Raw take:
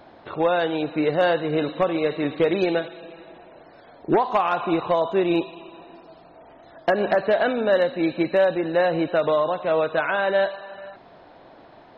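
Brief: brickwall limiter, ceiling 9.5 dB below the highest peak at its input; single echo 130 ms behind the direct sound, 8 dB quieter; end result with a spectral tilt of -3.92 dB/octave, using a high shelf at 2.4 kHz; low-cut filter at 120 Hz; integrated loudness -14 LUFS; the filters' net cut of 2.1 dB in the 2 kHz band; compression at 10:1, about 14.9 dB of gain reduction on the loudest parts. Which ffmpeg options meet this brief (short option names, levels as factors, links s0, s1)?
-af "highpass=120,equalizer=f=2000:t=o:g=-5.5,highshelf=f=2400:g=5.5,acompressor=threshold=0.0282:ratio=10,alimiter=level_in=1.41:limit=0.0631:level=0:latency=1,volume=0.708,aecho=1:1:130:0.398,volume=13.3"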